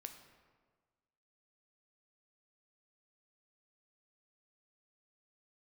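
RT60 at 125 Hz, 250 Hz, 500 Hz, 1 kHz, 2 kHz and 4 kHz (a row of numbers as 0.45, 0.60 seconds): 1.6, 1.5, 1.5, 1.5, 1.2, 0.90 seconds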